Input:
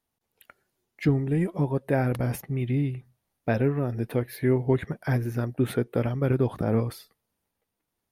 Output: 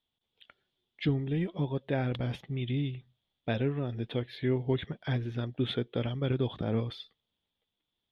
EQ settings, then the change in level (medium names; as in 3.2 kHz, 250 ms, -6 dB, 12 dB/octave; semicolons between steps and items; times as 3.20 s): resonant low-pass 3.4 kHz, resonance Q 10; peaking EQ 1.4 kHz -3 dB 2.9 oct; -5.5 dB